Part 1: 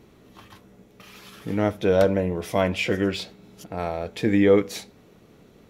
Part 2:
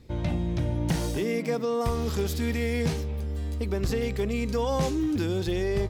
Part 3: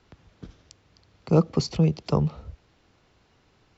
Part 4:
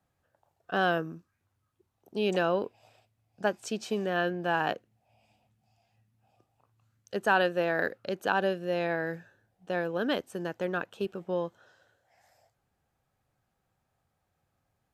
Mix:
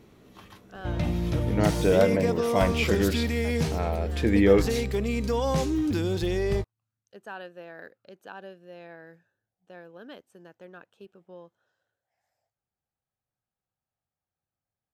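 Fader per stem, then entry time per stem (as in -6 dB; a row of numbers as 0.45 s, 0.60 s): -2.0 dB, +0.5 dB, -18.0 dB, -15.5 dB; 0.00 s, 0.75 s, 0.00 s, 0.00 s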